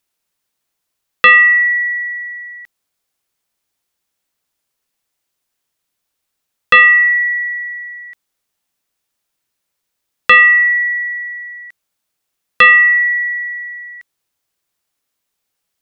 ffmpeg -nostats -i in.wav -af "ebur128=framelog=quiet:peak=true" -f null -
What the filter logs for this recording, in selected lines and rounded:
Integrated loudness:
  I:          -9.4 LUFS
  Threshold: -21.4 LUFS
Loudness range:
  LRA:         7.5 LU
  Threshold: -34.1 LUFS
  LRA low:   -19.1 LUFS
  LRA high:  -11.6 LUFS
True peak:
  Peak:       -1.1 dBFS